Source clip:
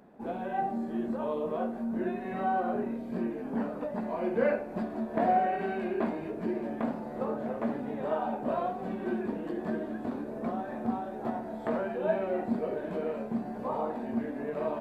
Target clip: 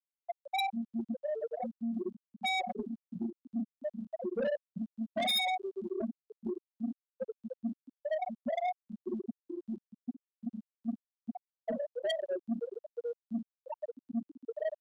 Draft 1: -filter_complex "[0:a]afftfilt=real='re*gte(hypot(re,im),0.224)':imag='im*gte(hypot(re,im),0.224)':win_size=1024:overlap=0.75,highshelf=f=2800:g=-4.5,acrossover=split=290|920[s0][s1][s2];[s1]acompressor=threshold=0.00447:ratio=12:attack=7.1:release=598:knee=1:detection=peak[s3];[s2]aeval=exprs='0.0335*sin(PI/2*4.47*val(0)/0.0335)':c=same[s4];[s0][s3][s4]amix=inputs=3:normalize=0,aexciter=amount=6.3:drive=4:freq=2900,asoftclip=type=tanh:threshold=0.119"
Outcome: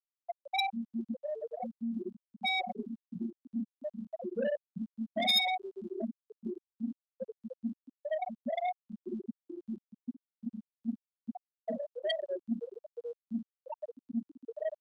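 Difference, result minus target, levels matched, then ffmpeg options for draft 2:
compression: peak gain reduction +10 dB; saturation: distortion -6 dB
-filter_complex "[0:a]afftfilt=real='re*gte(hypot(re,im),0.224)':imag='im*gte(hypot(re,im),0.224)':win_size=1024:overlap=0.75,highshelf=f=2800:g=-4.5,acrossover=split=290|920[s0][s1][s2];[s1]acompressor=threshold=0.0158:ratio=12:attack=7.1:release=598:knee=1:detection=peak[s3];[s2]aeval=exprs='0.0335*sin(PI/2*4.47*val(0)/0.0335)':c=same[s4];[s0][s3][s4]amix=inputs=3:normalize=0,aexciter=amount=6.3:drive=4:freq=2900,asoftclip=type=tanh:threshold=0.0501"

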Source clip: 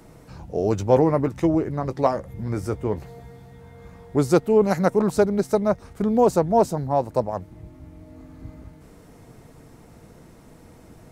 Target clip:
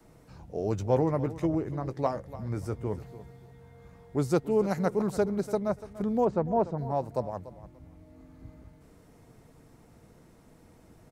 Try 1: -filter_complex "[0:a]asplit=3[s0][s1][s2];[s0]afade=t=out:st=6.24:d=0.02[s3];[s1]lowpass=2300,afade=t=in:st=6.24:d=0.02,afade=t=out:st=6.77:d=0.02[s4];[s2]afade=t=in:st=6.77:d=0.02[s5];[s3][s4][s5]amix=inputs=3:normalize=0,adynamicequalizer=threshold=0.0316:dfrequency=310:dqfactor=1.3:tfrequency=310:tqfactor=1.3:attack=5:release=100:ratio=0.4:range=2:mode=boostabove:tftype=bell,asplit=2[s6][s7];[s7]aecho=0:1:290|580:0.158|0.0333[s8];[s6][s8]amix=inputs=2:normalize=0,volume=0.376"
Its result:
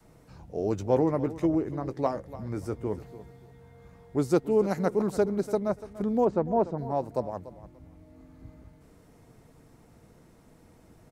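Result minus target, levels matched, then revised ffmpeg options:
125 Hz band -3.5 dB
-filter_complex "[0:a]asplit=3[s0][s1][s2];[s0]afade=t=out:st=6.24:d=0.02[s3];[s1]lowpass=2300,afade=t=in:st=6.24:d=0.02,afade=t=out:st=6.77:d=0.02[s4];[s2]afade=t=in:st=6.77:d=0.02[s5];[s3][s4][s5]amix=inputs=3:normalize=0,adynamicequalizer=threshold=0.0316:dfrequency=120:dqfactor=1.3:tfrequency=120:tqfactor=1.3:attack=5:release=100:ratio=0.4:range=2:mode=boostabove:tftype=bell,asplit=2[s6][s7];[s7]aecho=0:1:290|580:0.158|0.0333[s8];[s6][s8]amix=inputs=2:normalize=0,volume=0.376"

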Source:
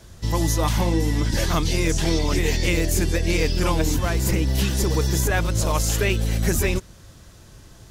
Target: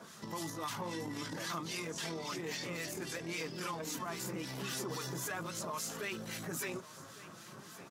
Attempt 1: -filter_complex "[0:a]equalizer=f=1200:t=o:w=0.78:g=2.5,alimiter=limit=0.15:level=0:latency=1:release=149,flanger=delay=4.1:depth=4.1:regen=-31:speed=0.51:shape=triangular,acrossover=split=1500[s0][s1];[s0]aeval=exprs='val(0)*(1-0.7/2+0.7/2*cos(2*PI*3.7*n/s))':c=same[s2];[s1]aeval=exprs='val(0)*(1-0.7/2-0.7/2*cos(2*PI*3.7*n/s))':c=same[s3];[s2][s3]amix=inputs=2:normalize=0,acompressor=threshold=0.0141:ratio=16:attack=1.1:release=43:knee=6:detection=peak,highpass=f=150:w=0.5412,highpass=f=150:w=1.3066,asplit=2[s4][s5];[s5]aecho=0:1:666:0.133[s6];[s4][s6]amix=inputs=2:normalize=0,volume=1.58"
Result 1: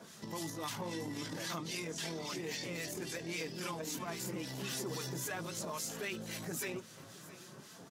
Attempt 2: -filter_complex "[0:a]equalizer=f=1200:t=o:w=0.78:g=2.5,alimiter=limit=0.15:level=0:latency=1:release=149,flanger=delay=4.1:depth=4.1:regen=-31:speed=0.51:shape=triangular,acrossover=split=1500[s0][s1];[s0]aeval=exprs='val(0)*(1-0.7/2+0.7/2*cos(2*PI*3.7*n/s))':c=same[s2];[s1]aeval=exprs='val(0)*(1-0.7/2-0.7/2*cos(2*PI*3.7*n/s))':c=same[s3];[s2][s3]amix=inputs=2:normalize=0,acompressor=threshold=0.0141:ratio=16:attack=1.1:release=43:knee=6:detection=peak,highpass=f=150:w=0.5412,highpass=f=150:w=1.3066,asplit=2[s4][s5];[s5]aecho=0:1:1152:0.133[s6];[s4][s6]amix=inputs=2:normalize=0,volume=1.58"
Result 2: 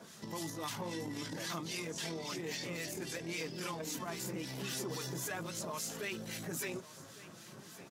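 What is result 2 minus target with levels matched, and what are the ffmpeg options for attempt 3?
1 kHz band -2.5 dB
-filter_complex "[0:a]equalizer=f=1200:t=o:w=0.78:g=9,alimiter=limit=0.15:level=0:latency=1:release=149,flanger=delay=4.1:depth=4.1:regen=-31:speed=0.51:shape=triangular,acrossover=split=1500[s0][s1];[s0]aeval=exprs='val(0)*(1-0.7/2+0.7/2*cos(2*PI*3.7*n/s))':c=same[s2];[s1]aeval=exprs='val(0)*(1-0.7/2-0.7/2*cos(2*PI*3.7*n/s))':c=same[s3];[s2][s3]amix=inputs=2:normalize=0,acompressor=threshold=0.0141:ratio=16:attack=1.1:release=43:knee=6:detection=peak,highpass=f=150:w=0.5412,highpass=f=150:w=1.3066,asplit=2[s4][s5];[s5]aecho=0:1:1152:0.133[s6];[s4][s6]amix=inputs=2:normalize=0,volume=1.58"

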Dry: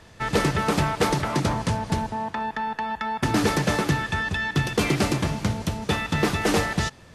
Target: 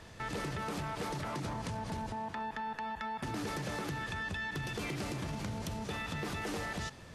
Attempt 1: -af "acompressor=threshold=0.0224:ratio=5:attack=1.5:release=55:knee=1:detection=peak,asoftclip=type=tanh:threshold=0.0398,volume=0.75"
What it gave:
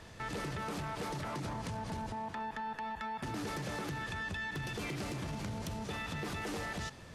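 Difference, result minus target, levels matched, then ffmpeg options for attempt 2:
saturation: distortion +18 dB
-af "acompressor=threshold=0.0224:ratio=5:attack=1.5:release=55:knee=1:detection=peak,asoftclip=type=tanh:threshold=0.133,volume=0.75"

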